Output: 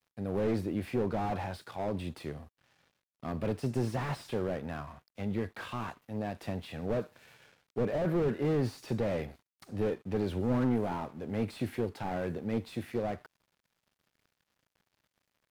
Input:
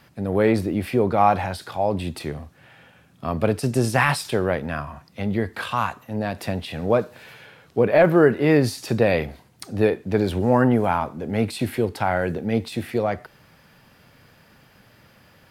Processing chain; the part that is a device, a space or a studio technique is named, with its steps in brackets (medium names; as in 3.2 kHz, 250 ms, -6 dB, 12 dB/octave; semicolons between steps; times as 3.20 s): early transistor amplifier (crossover distortion -48.5 dBFS; slew-rate limiter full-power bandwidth 54 Hz); trim -9 dB